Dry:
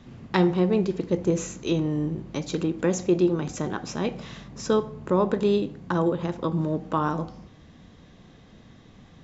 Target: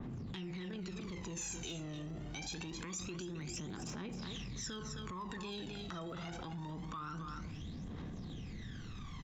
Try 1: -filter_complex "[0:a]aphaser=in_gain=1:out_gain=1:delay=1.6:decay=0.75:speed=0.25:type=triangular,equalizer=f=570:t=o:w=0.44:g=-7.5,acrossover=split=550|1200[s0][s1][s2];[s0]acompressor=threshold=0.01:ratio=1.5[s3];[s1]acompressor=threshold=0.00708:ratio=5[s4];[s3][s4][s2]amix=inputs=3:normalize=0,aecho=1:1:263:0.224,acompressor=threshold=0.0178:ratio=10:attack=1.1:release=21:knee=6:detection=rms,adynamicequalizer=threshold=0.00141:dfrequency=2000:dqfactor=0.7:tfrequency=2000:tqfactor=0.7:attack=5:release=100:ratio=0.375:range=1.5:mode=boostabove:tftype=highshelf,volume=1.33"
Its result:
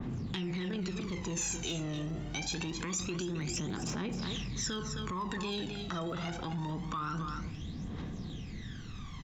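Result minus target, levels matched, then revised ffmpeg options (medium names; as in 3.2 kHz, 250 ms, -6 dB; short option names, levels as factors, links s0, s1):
compression: peak gain reduction -7.5 dB
-filter_complex "[0:a]aphaser=in_gain=1:out_gain=1:delay=1.6:decay=0.75:speed=0.25:type=triangular,equalizer=f=570:t=o:w=0.44:g=-7.5,acrossover=split=550|1200[s0][s1][s2];[s0]acompressor=threshold=0.01:ratio=1.5[s3];[s1]acompressor=threshold=0.00708:ratio=5[s4];[s3][s4][s2]amix=inputs=3:normalize=0,aecho=1:1:263:0.224,acompressor=threshold=0.00668:ratio=10:attack=1.1:release=21:knee=6:detection=rms,adynamicequalizer=threshold=0.00141:dfrequency=2000:dqfactor=0.7:tfrequency=2000:tqfactor=0.7:attack=5:release=100:ratio=0.375:range=1.5:mode=boostabove:tftype=highshelf,volume=1.33"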